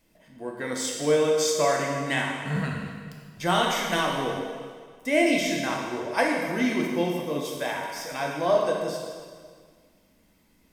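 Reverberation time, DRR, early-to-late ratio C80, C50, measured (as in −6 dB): 1.8 s, −0.5 dB, 3.5 dB, 1.5 dB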